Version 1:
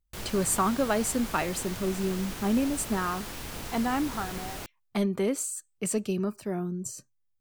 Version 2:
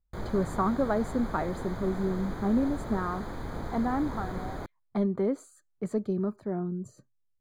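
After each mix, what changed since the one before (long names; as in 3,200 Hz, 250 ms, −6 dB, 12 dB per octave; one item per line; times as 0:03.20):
background +4.5 dB
master: add moving average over 16 samples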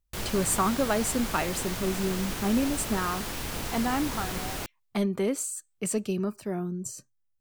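master: remove moving average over 16 samples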